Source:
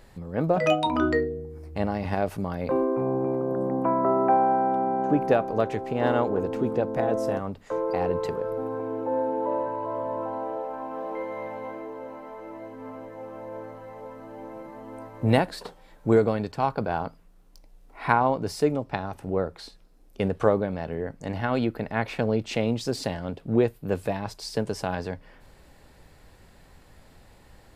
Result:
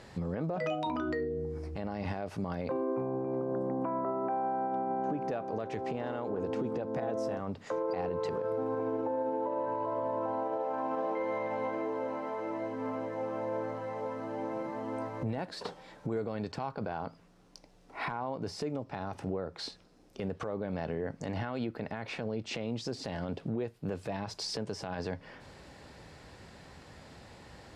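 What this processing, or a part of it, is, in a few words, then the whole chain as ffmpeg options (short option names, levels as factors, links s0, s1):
broadcast voice chain: -af "highpass=81,deesser=0.95,acompressor=threshold=0.0224:ratio=5,equalizer=f=5400:t=o:w=0.54:g=3,alimiter=level_in=1.78:limit=0.0631:level=0:latency=1:release=36,volume=0.562,lowpass=7200,volume=1.58"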